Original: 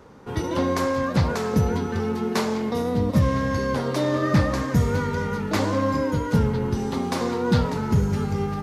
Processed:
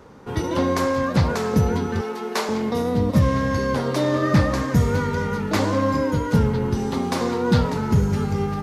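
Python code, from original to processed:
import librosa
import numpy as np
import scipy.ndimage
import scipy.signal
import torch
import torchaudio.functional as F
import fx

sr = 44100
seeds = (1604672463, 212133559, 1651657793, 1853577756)

y = fx.highpass(x, sr, hz=420.0, slope=12, at=(2.01, 2.49))
y = F.gain(torch.from_numpy(y), 2.0).numpy()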